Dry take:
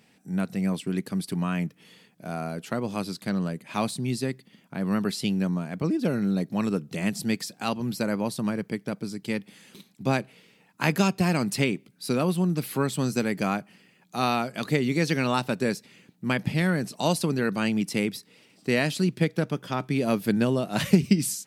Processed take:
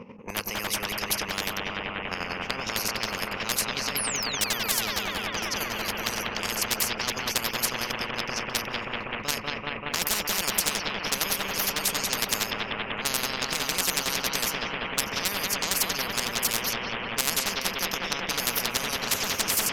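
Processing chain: painted sound fall, 4.31–5.68, 210–11000 Hz -27 dBFS; ripple EQ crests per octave 0.84, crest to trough 14 dB; chopper 10 Hz, depth 65%, duty 30%; low-pass opened by the level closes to 1000 Hz, open at -23 dBFS; hard clip -20 dBFS, distortion -9 dB; analogue delay 0.21 s, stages 4096, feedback 78%, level -5 dB; speed mistake 44.1 kHz file played as 48 kHz; spectral compressor 10:1; gain +6.5 dB

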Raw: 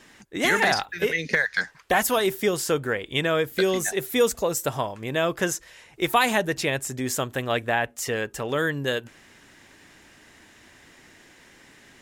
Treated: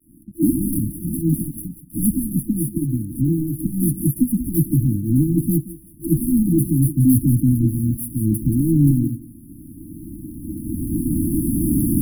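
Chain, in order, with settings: recorder AGC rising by 9.7 dB/s; soft clip -22.5 dBFS, distortion -9 dB; air absorption 63 m; thinning echo 0.176 s, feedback 35%, high-pass 360 Hz, level -8.5 dB; 2.37–3.54 compressor 4:1, threshold -31 dBFS, peak gain reduction 6.5 dB; dispersion lows, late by 86 ms, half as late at 560 Hz; sample leveller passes 5; gate -20 dBFS, range -11 dB; FFT band-reject 340–9600 Hz; gain +7 dB

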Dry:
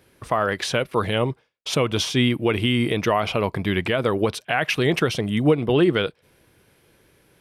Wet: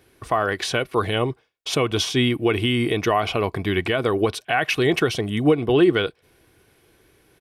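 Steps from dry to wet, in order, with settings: comb 2.7 ms, depth 36%

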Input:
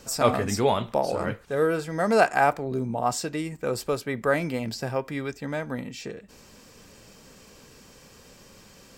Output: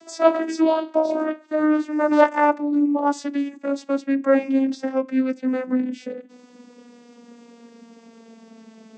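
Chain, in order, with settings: vocoder on a gliding note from E4, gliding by -7 st; gain +6 dB

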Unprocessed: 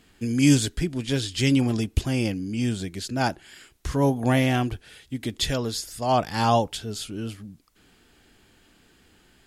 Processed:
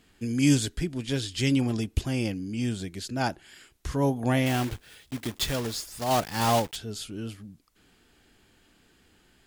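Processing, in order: 4.46–6.78 block floating point 3-bit; gain -3.5 dB

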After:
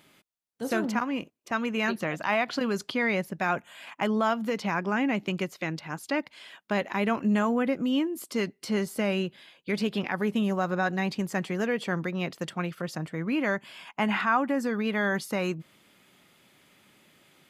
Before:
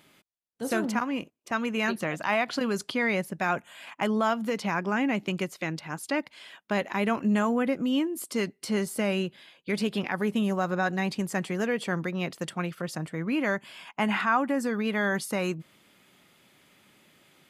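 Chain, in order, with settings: dynamic EQ 9300 Hz, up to -7 dB, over -58 dBFS, Q 1.6

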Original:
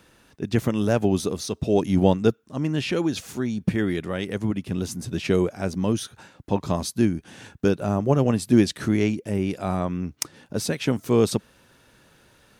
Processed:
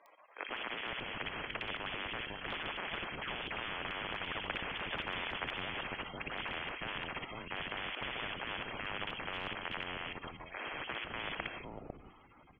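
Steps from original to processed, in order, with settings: Doppler pass-by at 5.01, 16 m/s, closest 8.7 m; high shelf 2400 Hz -7.5 dB; notches 50/100/150/200/250/300/350/400 Hz; in parallel at -1 dB: compressor 12:1, threshold -37 dBFS, peak gain reduction 21 dB; on the sum: dynamic EQ 110 Hz, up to +7 dB, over -45 dBFS, Q 1.7; spectral gate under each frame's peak -25 dB weak; inverted band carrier 3200 Hz; level quantiser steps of 15 dB; three bands offset in time mids, highs, lows 60/500 ms, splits 380/2100 Hz; on a send at -17 dB: reverb RT60 0.40 s, pre-delay 17 ms; on the sum: spectral compressor 10:1; gain +11.5 dB

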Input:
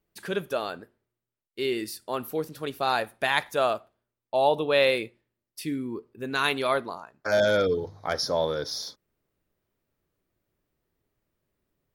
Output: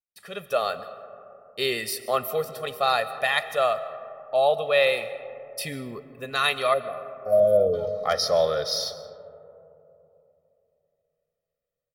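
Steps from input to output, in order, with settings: low shelf 400 Hz -8 dB; speakerphone echo 0.21 s, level -27 dB; spectral gain 6.74–7.74, 780–10000 Hz -29 dB; bell 6600 Hz -6.5 dB 0.2 oct; comb 1.6 ms, depth 89%; AGC gain up to 16 dB; gate with hold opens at -41 dBFS; digital reverb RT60 3.1 s, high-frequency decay 0.25×, pre-delay 95 ms, DRR 13.5 dB; gain -8 dB

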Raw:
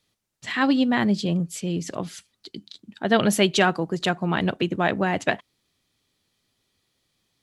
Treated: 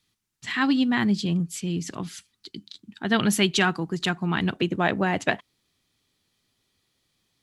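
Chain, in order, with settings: bell 570 Hz -12.5 dB 0.72 oct, from 4.54 s -2.5 dB

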